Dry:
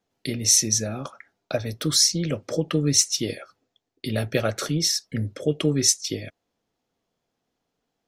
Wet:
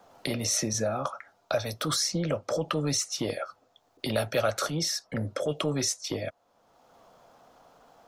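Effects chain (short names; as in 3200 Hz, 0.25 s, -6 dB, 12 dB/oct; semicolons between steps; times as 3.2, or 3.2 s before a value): transient shaper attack -6 dB, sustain +1 dB; band shelf 870 Hz +11.5 dB; three-band squash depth 70%; gain -5.5 dB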